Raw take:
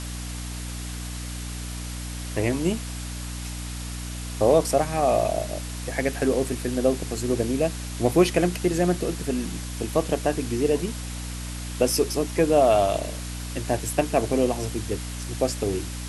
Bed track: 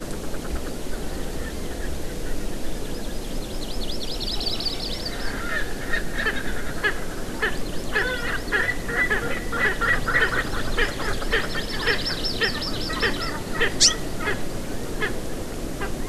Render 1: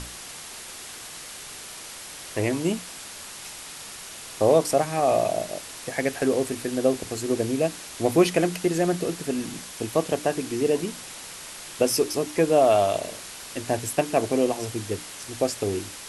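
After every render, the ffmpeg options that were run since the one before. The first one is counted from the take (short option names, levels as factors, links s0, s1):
-af "bandreject=f=60:t=h:w=6,bandreject=f=120:t=h:w=6,bandreject=f=180:t=h:w=6,bandreject=f=240:t=h:w=6,bandreject=f=300:t=h:w=6"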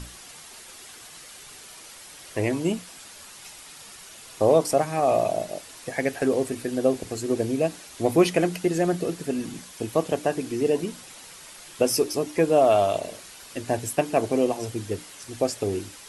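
-af "afftdn=nr=7:nf=-40"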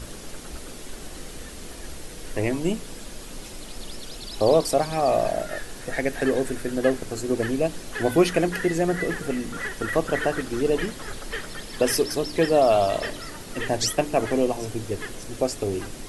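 -filter_complex "[1:a]volume=0.316[s0];[0:a][s0]amix=inputs=2:normalize=0"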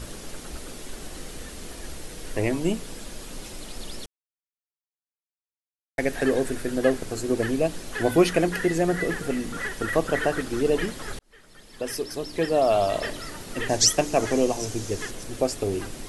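-filter_complex "[0:a]asettb=1/sr,asplit=3[s0][s1][s2];[s0]atrim=end=13.694[s3];[s1]atrim=start=13.69:end=15.11,asetpts=PTS-STARTPTS,afade=t=in:d=0.004:c=qsin,afade=t=out:st=1.416:d=0.004:c=qsin,equalizer=f=6200:t=o:w=0.72:g=9.5[s4];[s2]atrim=start=15.106[s5];[s3][s4]acrossfade=d=0.004:c1=hsin:c2=qsin[s6];[s6][s5]acrossfade=d=0.004:c1=qsin:c2=hsin,asplit=4[s7][s8][s9][s10];[s7]atrim=end=4.06,asetpts=PTS-STARTPTS,afade=t=out:st=4.056:d=0.004:c=hsin[s11];[s8]atrim=start=4.06:end=5.98,asetpts=PTS-STARTPTS,volume=0[s12];[s9]atrim=start=5.98:end=11.19,asetpts=PTS-STARTPTS,afade=t=in:d=0.004:c=hsin,afade=t=out:st=5.206:d=0.004:c=hsin[s13];[s10]atrim=start=11.19,asetpts=PTS-STARTPTS,afade=t=in:d=1.96[s14];[s11][s12][s13][s14]concat=n=4:v=0:a=1"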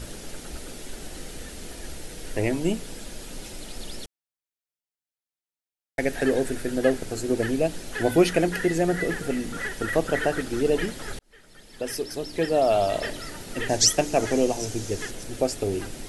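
-af "equalizer=f=1100:w=7.1:g=-8"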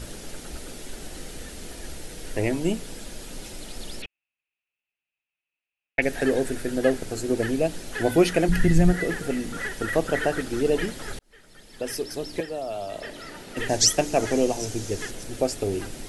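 -filter_complex "[0:a]asettb=1/sr,asplit=3[s0][s1][s2];[s0]atrim=end=4.024[s3];[s1]atrim=start=4.02:end=6.02,asetpts=PTS-STARTPTS,afade=t=in:d=0.004:c=qsin,afade=t=out:st=1.996:d=0.004:c=qsin,lowpass=f=2600:t=q:w=12[s4];[s2]atrim=start=6.016[s5];[s3][s4]acrossfade=d=0.004:c1=hsin:c2=qsin[s6];[s6][s5]acrossfade=d=0.004:c1=qsin:c2=hsin,asplit=3[s7][s8][s9];[s7]afade=t=out:st=8.48:d=0.02[s10];[s8]asubboost=boost=11.5:cutoff=130,afade=t=in:st=8.48:d=0.02,afade=t=out:st=8.92:d=0.02[s11];[s9]afade=t=in:st=8.92:d=0.02[s12];[s10][s11][s12]amix=inputs=3:normalize=0,asettb=1/sr,asplit=3[s13][s14][s15];[s13]atrim=end=12.404[s16];[s14]atrim=start=12.4:end=13.57,asetpts=PTS-STARTPTS,afade=t=in:d=0.004:c=qsin,afade=t=out:st=1.166:d=0.004:c=qsin,acrossover=split=160|410|4200[s17][s18][s19][s20];[s17]acompressor=threshold=0.00282:ratio=3[s21];[s18]acompressor=threshold=0.00631:ratio=3[s22];[s19]acompressor=threshold=0.0178:ratio=3[s23];[s20]acompressor=threshold=0.00224:ratio=3[s24];[s21][s22][s23][s24]amix=inputs=4:normalize=0[s25];[s15]atrim=start=13.566[s26];[s16][s25]acrossfade=d=0.004:c1=hsin:c2=qsin[s27];[s27][s26]acrossfade=d=0.004:c1=qsin:c2=hsin"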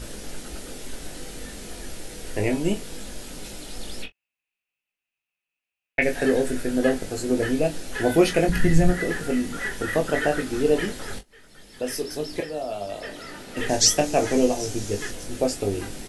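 -filter_complex "[0:a]asplit=2[s0][s1];[s1]adelay=24,volume=0.282[s2];[s0][s2]amix=inputs=2:normalize=0,aecho=1:1:20|39:0.473|0.188"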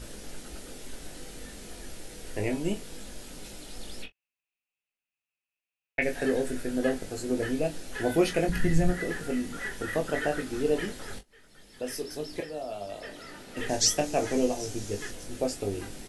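-af "volume=0.501"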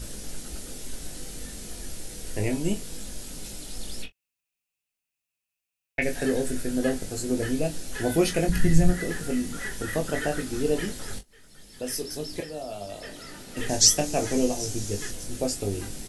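-af "bass=f=250:g=6,treble=f=4000:g=8"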